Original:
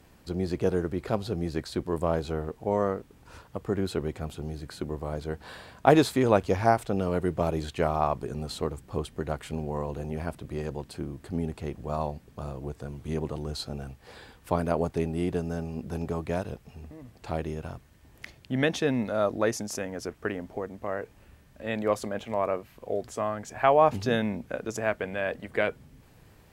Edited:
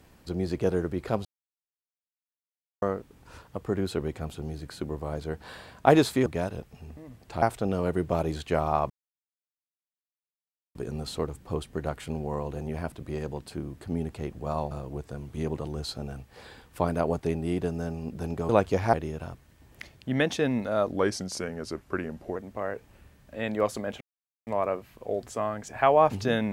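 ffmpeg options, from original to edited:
-filter_complex "[0:a]asplit=12[s0][s1][s2][s3][s4][s5][s6][s7][s8][s9][s10][s11];[s0]atrim=end=1.25,asetpts=PTS-STARTPTS,afade=t=out:st=1.246:d=0.004:c=hsin[s12];[s1]atrim=start=1.25:end=2.82,asetpts=PTS-STARTPTS,volume=0[s13];[s2]atrim=start=2.82:end=6.262,asetpts=PTS-STARTPTS,afade=t=in:d=0.004:c=hsin[s14];[s3]atrim=start=16.198:end=17.362[s15];[s4]atrim=start=6.698:end=8.18,asetpts=PTS-STARTPTS,afade=t=out:st=1.478:d=0.004:c=hsin,apad=pad_dur=1.85[s16];[s5]atrim=start=8.18:end=12.142,asetpts=PTS-STARTPTS,afade=t=in:d=0.004:c=hsin[s17];[s6]atrim=start=12.418:end=16.202[s18];[s7]atrim=start=6.258:end=6.702[s19];[s8]atrim=start=17.358:end=19.354[s20];[s9]atrim=start=19.35:end=20.63,asetpts=PTS-STARTPTS,asetrate=39249,aresample=44100[s21];[s10]atrim=start=20.626:end=22.28,asetpts=PTS-STARTPTS,afade=t=out:st=1.65:d=0.004:c=hsin,apad=pad_dur=0.46[s22];[s11]atrim=start=22.28,asetpts=PTS-STARTPTS,afade=t=in:d=0.004:c=hsin[s23];[s12][s13][s14]concat=n=3:v=0:a=1[s24];[s24][s15]acrossfade=d=0.004:c1=hsin:c2=hsin[s25];[s16][s17]concat=n=2:v=0:a=1[s26];[s25][s26]acrossfade=d=0.004:c1=hsin:c2=hsin[s27];[s27][s18]acrossfade=d=0.004:c1=hsin:c2=hsin[s28];[s28][s19]acrossfade=d=0.004:c1=hsin:c2=hsin[s29];[s29][s20]acrossfade=d=0.004:c1=hsin:c2=hsin[s30];[s30][s21]acrossfade=d=0.004:c1=hsin:c2=hsin[s31];[s22][s23]concat=n=2:v=0:a=1[s32];[s31][s32]acrossfade=d=0.004:c1=hsin:c2=hsin"

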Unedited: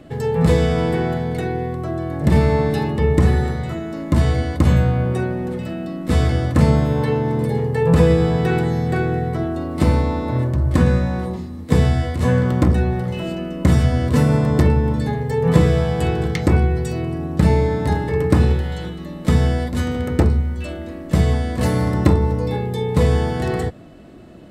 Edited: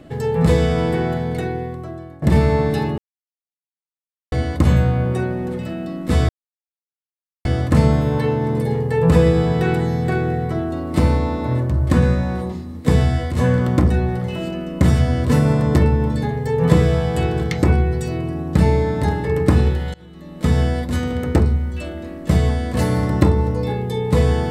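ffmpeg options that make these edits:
-filter_complex "[0:a]asplit=6[s0][s1][s2][s3][s4][s5];[s0]atrim=end=2.22,asetpts=PTS-STARTPTS,afade=t=out:st=1.4:d=0.82:silence=0.11885[s6];[s1]atrim=start=2.22:end=2.98,asetpts=PTS-STARTPTS,afade=t=in:d=0.004:c=hsin:silence=0.11885,afade=t=out:st=0.756:d=0.004:c=hsin[s7];[s2]atrim=start=2.98:end=4.32,asetpts=PTS-STARTPTS,volume=0[s8];[s3]atrim=start=4.32:end=6.29,asetpts=PTS-STARTPTS,afade=t=in:d=0.004:c=hsin,afade=t=out:st=1.966:d=0.004:c=hsin,apad=pad_dur=1.16[s9];[s4]atrim=start=6.29:end=18.78,asetpts=PTS-STARTPTS,afade=t=in:d=0.004:c=hsin,afade=t=out:st=12.486:d=0.004:c=hsin:silence=0.0707946[s10];[s5]atrim=start=18.78,asetpts=PTS-STARTPTS,afade=t=in:d=0.66:silence=0.0707946[s11];[s6][s7][s8][s9][s10][s11]concat=n=6:v=0:a=1"

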